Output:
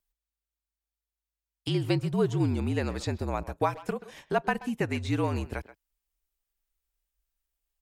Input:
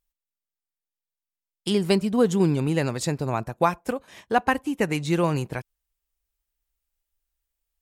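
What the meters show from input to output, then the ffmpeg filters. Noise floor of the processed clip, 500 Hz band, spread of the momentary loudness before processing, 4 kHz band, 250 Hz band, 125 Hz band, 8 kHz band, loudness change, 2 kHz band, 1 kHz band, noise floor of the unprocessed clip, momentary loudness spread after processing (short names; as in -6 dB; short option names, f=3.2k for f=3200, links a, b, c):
under -85 dBFS, -6.0 dB, 11 LU, -6.0 dB, -6.0 dB, -2.5 dB, -11.0 dB, -5.5 dB, -5.5 dB, -6.5 dB, under -85 dBFS, 10 LU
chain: -filter_complex "[0:a]acrossover=split=5400[a][b];[b]acompressor=threshold=-47dB:ratio=4:attack=1:release=60[c];[a][c]amix=inputs=2:normalize=0,asplit=2[d][e];[e]adelay=130,highpass=300,lowpass=3.4k,asoftclip=type=hard:threshold=-17dB,volume=-16dB[f];[d][f]amix=inputs=2:normalize=0,afreqshift=-52,asplit=2[g][h];[h]acompressor=threshold=-28dB:ratio=6,volume=-1.5dB[i];[g][i]amix=inputs=2:normalize=0,volume=-7.5dB"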